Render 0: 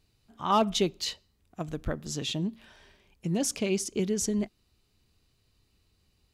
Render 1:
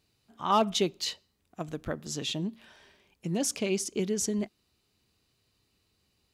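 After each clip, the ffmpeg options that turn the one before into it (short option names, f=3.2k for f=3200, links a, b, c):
-af "highpass=f=160:p=1"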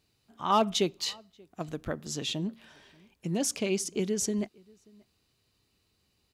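-filter_complex "[0:a]asplit=2[a][b];[b]adelay=583.1,volume=-27dB,highshelf=f=4k:g=-13.1[c];[a][c]amix=inputs=2:normalize=0"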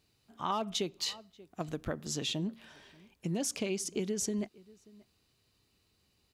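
-af "acompressor=threshold=-30dB:ratio=6"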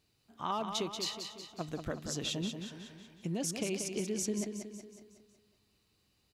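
-af "aecho=1:1:184|368|552|736|920|1104:0.447|0.228|0.116|0.0593|0.0302|0.0154,volume=-2dB"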